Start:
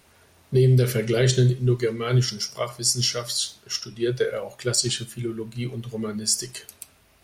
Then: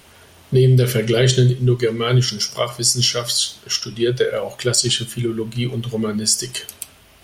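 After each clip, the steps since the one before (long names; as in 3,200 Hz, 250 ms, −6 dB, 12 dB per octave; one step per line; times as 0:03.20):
parametric band 3,100 Hz +7 dB 0.21 octaves
in parallel at +2 dB: downward compressor, threshold −28 dBFS, peak gain reduction 13.5 dB
on the sum: level +2 dB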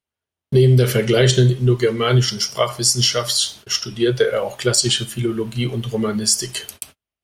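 noise gate −38 dBFS, range −41 dB
dynamic equaliser 920 Hz, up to +4 dB, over −33 dBFS, Q 0.81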